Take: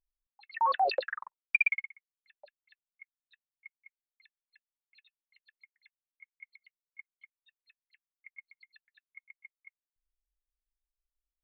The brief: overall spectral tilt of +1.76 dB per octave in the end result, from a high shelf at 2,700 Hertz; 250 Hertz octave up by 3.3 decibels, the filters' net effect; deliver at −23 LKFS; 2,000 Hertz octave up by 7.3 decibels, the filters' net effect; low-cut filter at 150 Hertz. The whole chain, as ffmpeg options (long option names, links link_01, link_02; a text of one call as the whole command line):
ffmpeg -i in.wav -af "highpass=150,equalizer=frequency=250:width_type=o:gain=6.5,equalizer=frequency=2000:width_type=o:gain=5,highshelf=frequency=2700:gain=7.5,volume=1.5dB" out.wav